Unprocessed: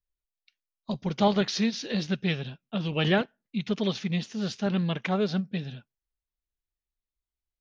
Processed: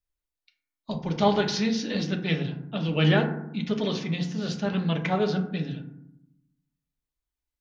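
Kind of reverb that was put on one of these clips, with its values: FDN reverb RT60 0.79 s, low-frequency decay 1.55×, high-frequency decay 0.35×, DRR 3 dB

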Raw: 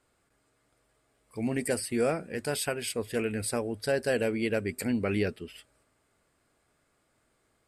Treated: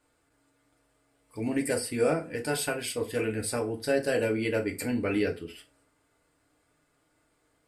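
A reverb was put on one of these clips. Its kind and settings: FDN reverb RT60 0.31 s, low-frequency decay 0.9×, high-frequency decay 0.75×, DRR 1 dB; trim -1.5 dB

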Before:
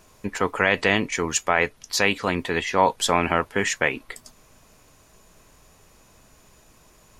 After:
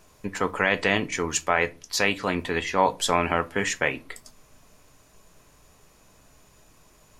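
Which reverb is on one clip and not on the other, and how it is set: simulated room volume 130 m³, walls furnished, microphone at 0.35 m; trim -2.5 dB

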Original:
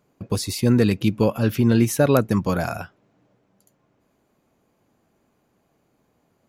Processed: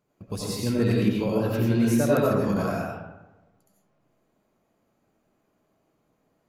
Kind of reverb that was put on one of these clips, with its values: algorithmic reverb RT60 1.1 s, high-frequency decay 0.45×, pre-delay 50 ms, DRR -4.5 dB; trim -9.5 dB

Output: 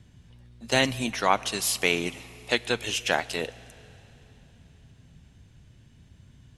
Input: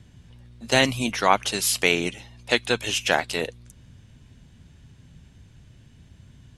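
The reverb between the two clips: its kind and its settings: Schroeder reverb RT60 3.6 s, combs from 27 ms, DRR 19 dB; trim -3.5 dB

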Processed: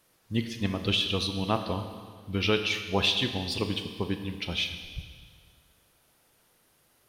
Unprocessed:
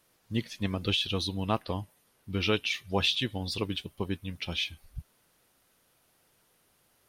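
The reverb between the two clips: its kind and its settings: Schroeder reverb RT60 1.8 s, combs from 27 ms, DRR 7 dB; trim +1.5 dB

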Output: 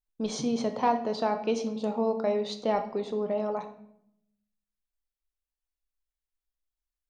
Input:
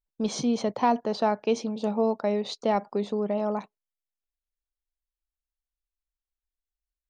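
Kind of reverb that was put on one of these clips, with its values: simulated room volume 170 m³, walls mixed, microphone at 0.47 m; trim -3 dB

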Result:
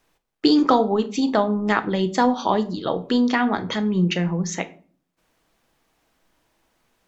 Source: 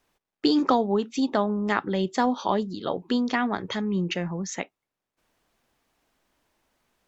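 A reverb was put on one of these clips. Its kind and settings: simulated room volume 370 m³, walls furnished, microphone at 0.62 m; trim +4 dB

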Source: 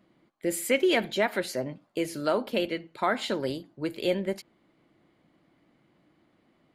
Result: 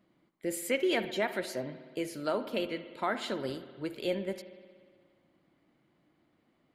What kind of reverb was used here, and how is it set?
spring tank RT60 1.8 s, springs 59 ms, chirp 20 ms, DRR 11.5 dB; trim -5.5 dB

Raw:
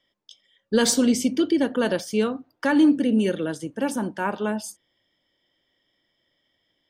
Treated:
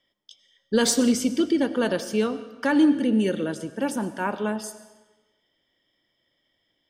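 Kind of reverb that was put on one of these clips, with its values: algorithmic reverb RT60 1.2 s, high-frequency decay 0.9×, pre-delay 60 ms, DRR 13.5 dB; trim -1 dB

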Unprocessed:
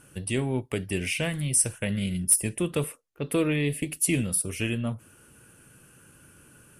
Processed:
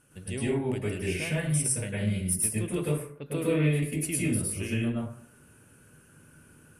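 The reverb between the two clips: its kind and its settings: plate-style reverb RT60 0.58 s, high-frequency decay 0.45×, pre-delay 95 ms, DRR -6.5 dB; trim -9.5 dB

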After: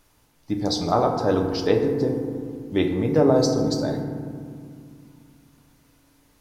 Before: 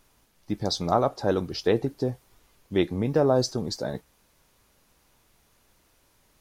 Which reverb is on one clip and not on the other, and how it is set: FDN reverb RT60 2.1 s, low-frequency decay 1.55×, high-frequency decay 0.35×, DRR 2.5 dB; trim +1 dB

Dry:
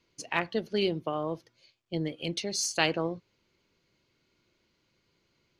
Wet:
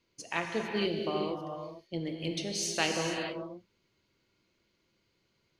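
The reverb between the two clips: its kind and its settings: gated-style reverb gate 480 ms flat, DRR 2 dB; trim -4 dB

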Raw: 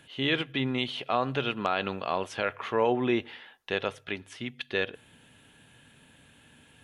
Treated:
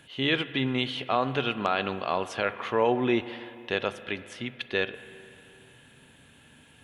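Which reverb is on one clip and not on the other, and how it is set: spring tank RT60 2.9 s, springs 34/39 ms, chirp 60 ms, DRR 13.5 dB; trim +1.5 dB

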